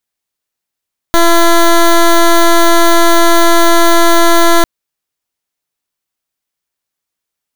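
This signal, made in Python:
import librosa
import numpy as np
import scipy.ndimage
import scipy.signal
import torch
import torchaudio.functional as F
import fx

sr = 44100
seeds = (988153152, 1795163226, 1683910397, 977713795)

y = fx.pulse(sr, length_s=3.5, hz=338.0, level_db=-6.0, duty_pct=13)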